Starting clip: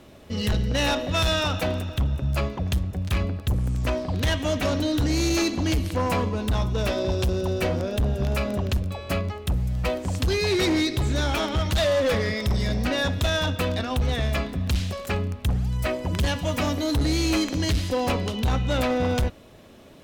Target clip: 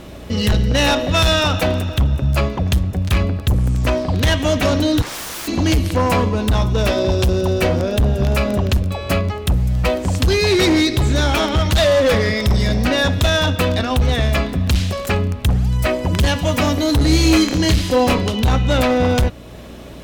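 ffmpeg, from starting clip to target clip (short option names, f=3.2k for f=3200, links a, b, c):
-filter_complex "[0:a]asplit=2[a][b];[b]acompressor=threshold=-37dB:ratio=6,volume=-1.5dB[c];[a][c]amix=inputs=2:normalize=0,aeval=exprs='val(0)+0.00562*(sin(2*PI*60*n/s)+sin(2*PI*2*60*n/s)/2+sin(2*PI*3*60*n/s)/3+sin(2*PI*4*60*n/s)/4+sin(2*PI*5*60*n/s)/5)':c=same,asplit=3[d][e][f];[d]afade=t=out:st=5.01:d=0.02[g];[e]aeval=exprs='0.0335*(abs(mod(val(0)/0.0335+3,4)-2)-1)':c=same,afade=t=in:st=5.01:d=0.02,afade=t=out:st=5.47:d=0.02[h];[f]afade=t=in:st=5.47:d=0.02[i];[g][h][i]amix=inputs=3:normalize=0,asettb=1/sr,asplit=3[j][k][l];[j]atrim=end=17.054[m];[k]atrim=start=17.05:end=18.22,asetpts=PTS-STARTPTS,afade=t=in:d=0.004:c=qsin,afade=t=out:st=1.166:d=0.004:c=qsin,asplit=2[n][o];[o]adelay=28,volume=-7dB[p];[n][p]amix=inputs=2:normalize=0,atrim=end_sample=51597[q];[l]atrim=start=18.216[r];[m][q]acrossfade=d=0.004:c1=hsin:c2=qsin[s];[s][r]acrossfade=d=0.004:c1=qsin:c2=hsin,volume=6.5dB"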